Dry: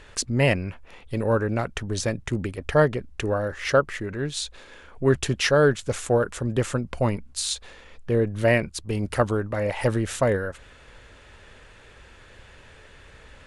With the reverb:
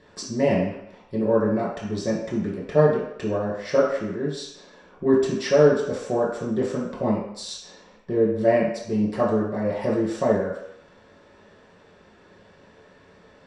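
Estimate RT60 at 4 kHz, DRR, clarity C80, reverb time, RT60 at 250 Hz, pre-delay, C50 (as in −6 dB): 0.70 s, −6.5 dB, 6.0 dB, 0.75 s, 0.55 s, 3 ms, 2.5 dB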